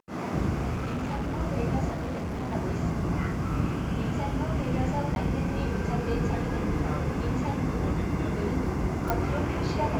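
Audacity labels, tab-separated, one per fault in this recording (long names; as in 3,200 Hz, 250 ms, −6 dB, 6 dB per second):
0.750000	1.410000	clipping −27.5 dBFS
1.900000	2.550000	clipping −29 dBFS
5.150000	5.160000	drop-out 11 ms
9.100000	9.100000	click −12 dBFS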